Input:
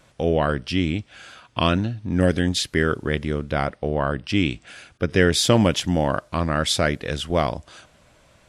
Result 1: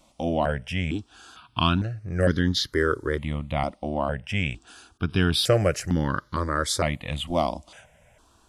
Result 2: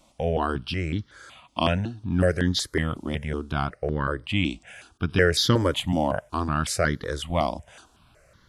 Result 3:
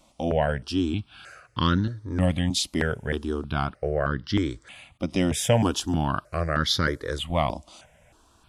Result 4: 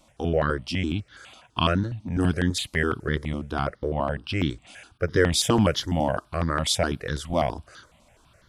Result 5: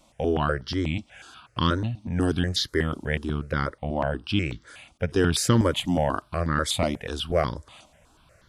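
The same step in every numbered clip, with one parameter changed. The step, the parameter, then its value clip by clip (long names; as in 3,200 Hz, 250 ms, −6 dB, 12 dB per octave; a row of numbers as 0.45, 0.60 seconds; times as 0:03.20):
step-sequenced phaser, speed: 2.2, 5.4, 3.2, 12, 8.2 Hertz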